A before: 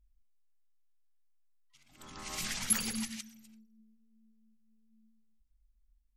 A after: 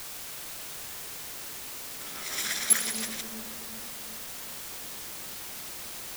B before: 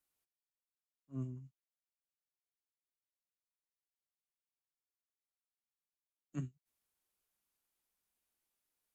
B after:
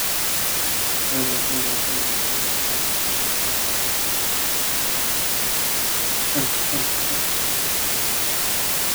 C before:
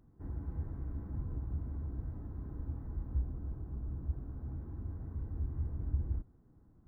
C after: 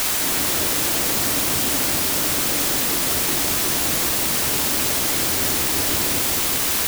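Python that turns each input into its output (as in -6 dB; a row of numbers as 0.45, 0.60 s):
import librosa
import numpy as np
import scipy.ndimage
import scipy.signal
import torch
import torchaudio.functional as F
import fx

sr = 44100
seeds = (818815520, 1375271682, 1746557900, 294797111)

y = fx.lower_of_two(x, sr, delay_ms=0.55)
y = scipy.signal.sosfilt(scipy.signal.butter(2, 440.0, 'highpass', fs=sr, output='sos'), y)
y = fx.quant_dither(y, sr, seeds[0], bits=8, dither='triangular')
y = fx.echo_wet_lowpass(y, sr, ms=373, feedback_pct=52, hz=770.0, wet_db=-4.0)
y = y * 10.0 ** (-9 / 20.0) / np.max(np.abs(y))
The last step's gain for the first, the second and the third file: +8.0, +26.5, +27.0 dB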